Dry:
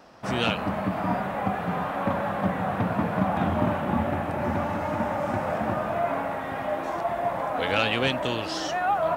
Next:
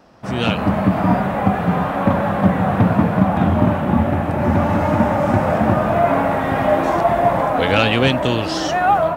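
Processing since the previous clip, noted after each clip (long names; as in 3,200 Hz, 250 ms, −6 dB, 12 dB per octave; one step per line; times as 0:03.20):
low-shelf EQ 350 Hz +7.5 dB
automatic gain control gain up to 14 dB
level −1 dB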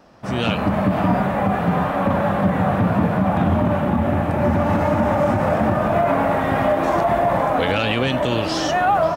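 tuned comb filter 590 Hz, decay 0.39 s, mix 60%
single-tap delay 542 ms −19 dB
brickwall limiter −16 dBFS, peak gain reduction 6.5 dB
level +7 dB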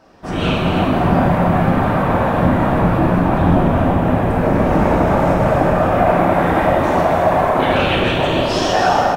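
random phases in short frames
single-tap delay 280 ms −8 dB
reverb whose tail is shaped and stops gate 490 ms falling, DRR −2 dB
level −1 dB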